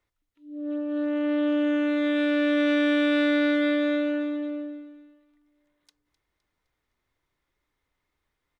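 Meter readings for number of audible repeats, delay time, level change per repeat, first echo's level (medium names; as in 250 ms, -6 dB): 3, 257 ms, -6.5 dB, -16.0 dB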